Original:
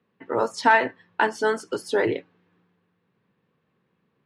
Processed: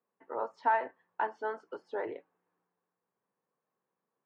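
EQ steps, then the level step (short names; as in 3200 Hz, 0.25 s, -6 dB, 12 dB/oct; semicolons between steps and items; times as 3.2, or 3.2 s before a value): band-pass 820 Hz, Q 1.3; air absorption 79 m; -8.0 dB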